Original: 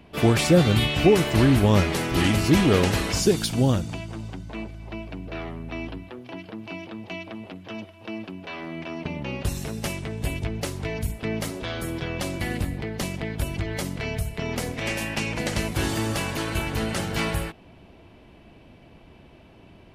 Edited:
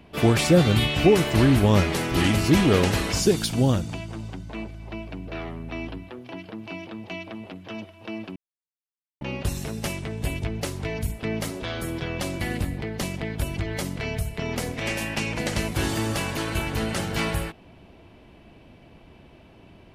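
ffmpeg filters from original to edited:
-filter_complex "[0:a]asplit=3[a][b][c];[a]atrim=end=8.36,asetpts=PTS-STARTPTS,afade=t=out:st=8.356:d=0.004:c=hsin[d];[b]atrim=start=8.36:end=9.21,asetpts=PTS-STARTPTS,volume=0[e];[c]atrim=start=9.21,asetpts=PTS-STARTPTS,afade=t=in:d=0.004:c=hsin[f];[d][e][f]concat=n=3:v=0:a=1"

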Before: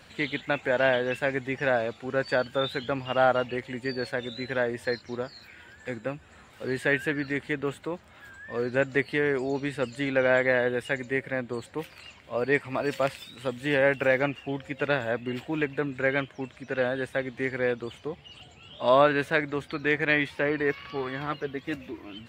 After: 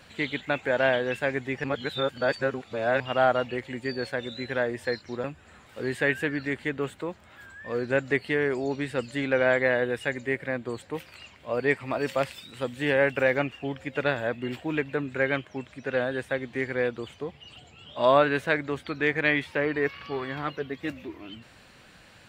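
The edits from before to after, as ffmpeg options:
-filter_complex "[0:a]asplit=4[a][b][c][d];[a]atrim=end=1.642[e];[b]atrim=start=1.638:end=3.002,asetpts=PTS-STARTPTS,areverse[f];[c]atrim=start=2.998:end=5.242[g];[d]atrim=start=6.078[h];[e][f]acrossfade=d=0.004:c1=hsin:c2=hsin[i];[i][g]acrossfade=d=0.004:c1=hsin:c2=hsin[j];[j][h]acrossfade=d=0.004:c1=hsin:c2=hsin"

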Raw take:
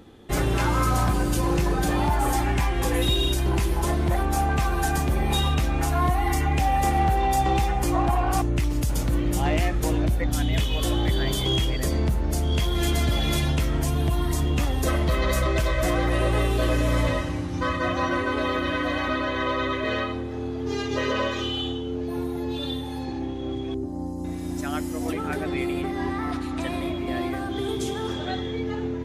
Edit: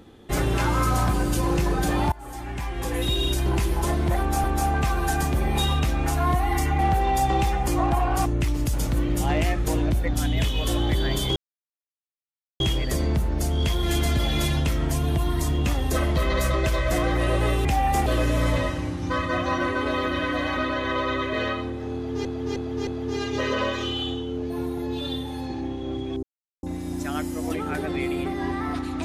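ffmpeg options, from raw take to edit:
-filter_complex "[0:a]asplit=12[a][b][c][d][e][f][g][h][i][j][k][l];[a]atrim=end=2.12,asetpts=PTS-STARTPTS,afade=t=out:st=2.116:d=0.004:c=hsin:silence=0.0668344[m];[b]atrim=start=2.12:end=4.442,asetpts=PTS-STARTPTS,afade=t=in:d=1.27:silence=0.0668344[n];[c]atrim=start=4.188:end=6.542[o];[d]atrim=start=6.948:end=11.52,asetpts=PTS-STARTPTS,afade=t=out:st=4.568:d=0.004:c=hsin,apad=pad_dur=1.24[p];[e]atrim=start=11.52:end=16.572,asetpts=PTS-STARTPTS,afade=t=in:d=0.004:c=hsin[q];[f]atrim=start=6.538:end=6.952[r];[g]atrim=start=16.568:end=20.762[s];[h]atrim=start=20.448:end=20.762[t];[i]atrim=start=20.448:end=20.762[u];[j]atrim=start=20.448:end=23.81,asetpts=PTS-STARTPTS,afade=t=out:st=3.358:d=0.004:c=hsin[v];[k]atrim=start=23.81:end=24.21,asetpts=PTS-STARTPTS,volume=0[w];[l]atrim=start=24.21,asetpts=PTS-STARTPTS,afade=t=in:d=0.004:c=hsin[x];[m][n]concat=n=2:v=0:a=1[y];[y][o]acrossfade=d=0.004:c1=hsin:c2=hsin[z];[p][q]concat=n=2:v=0:a=1[aa];[z][aa]acrossfade=d=0.004:c1=hsin:c2=hsin[ab];[ab][r]acrossfade=d=0.004:c1=hsin:c2=hsin[ac];[ac][s]acrossfade=d=0.004:c1=hsin:c2=hsin[ad];[ad][t]acrossfade=d=0.004:c1=hsin:c2=hsin[ae];[ae][u]acrossfade=d=0.004:c1=hsin:c2=hsin[af];[v][w][x]concat=n=3:v=0:a=1[ag];[af][ag]acrossfade=d=0.004:c1=hsin:c2=hsin"

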